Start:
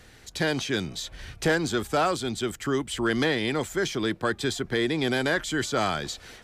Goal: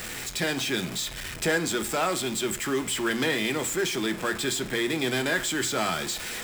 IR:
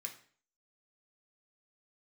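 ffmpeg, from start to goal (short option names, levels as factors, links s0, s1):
-filter_complex "[0:a]aeval=exprs='val(0)+0.5*0.0398*sgn(val(0))':c=same,asplit=2[s0][s1];[1:a]atrim=start_sample=2205[s2];[s1][s2]afir=irnorm=-1:irlink=0,volume=1.19[s3];[s0][s3]amix=inputs=2:normalize=0,volume=0.531"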